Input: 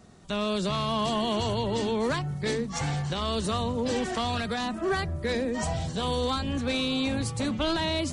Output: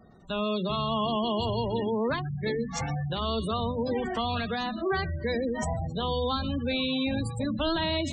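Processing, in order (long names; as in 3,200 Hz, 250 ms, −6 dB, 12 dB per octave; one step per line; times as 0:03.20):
mains-hum notches 50/100/150/200/250/300/350/400 Hz
delay with a high-pass on its return 125 ms, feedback 44%, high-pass 1,800 Hz, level −8.5 dB
gate on every frequency bin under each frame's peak −20 dB strong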